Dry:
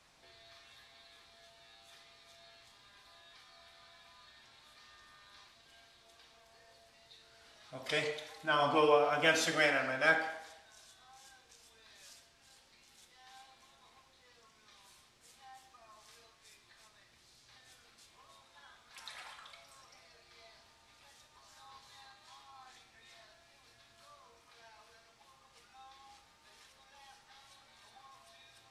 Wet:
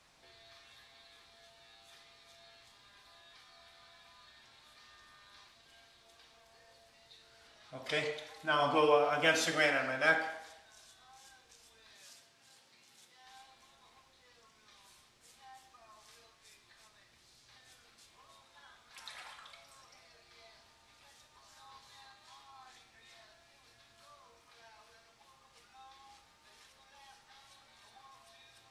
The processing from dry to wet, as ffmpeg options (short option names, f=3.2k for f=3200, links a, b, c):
-filter_complex "[0:a]asettb=1/sr,asplit=3[a][b][c];[a]atrim=end=7.474[d];[b]atrim=start=7.47:end=8.36,asetpts=PTS-STARTPTS,afade=t=in:d=0.004:c=qsin,afade=t=out:st=0.886:d=0.004:c=qsin,highshelf=f=6.9k:g=-5[e];[c]atrim=start=8.356[f];[d][e]acrossfade=d=0.004:c1=hsin:c2=qsin[g];[g][f]acrossfade=d=0.004:c1=qsin:c2=hsin,asettb=1/sr,asplit=3[h][i][j];[h]atrim=end=11.934[k];[i]atrim=start=11.93:end=13.26,asetpts=PTS-STARTPTS,afade=t=in:d=0.004:c=qsin,afade=t=out:st=1.326:d=0.004:c=qsin,highpass=f=95:w=0.5412,highpass=f=95:w=1.3066[l];[j]atrim=start=13.256[m];[k][l]acrossfade=d=0.004:c1=hsin:c2=qsin[n];[n][m]acrossfade=d=0.004:c1=qsin:c2=hsin"